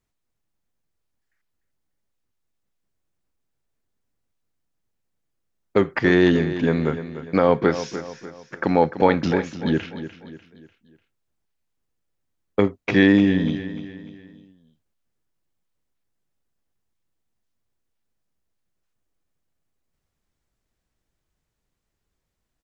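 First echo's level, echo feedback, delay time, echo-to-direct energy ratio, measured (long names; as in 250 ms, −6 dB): −12.0 dB, 42%, 297 ms, −11.0 dB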